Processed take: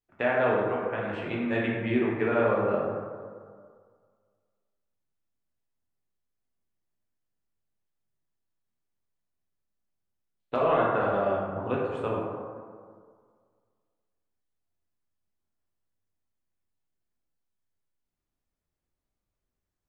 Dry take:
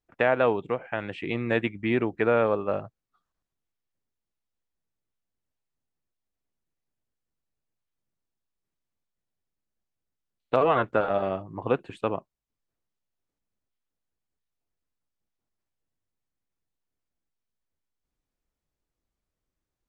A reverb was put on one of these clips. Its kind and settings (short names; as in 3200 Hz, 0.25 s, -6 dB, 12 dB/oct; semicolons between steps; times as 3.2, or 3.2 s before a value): plate-style reverb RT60 1.9 s, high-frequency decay 0.4×, DRR -4.5 dB; gain -7 dB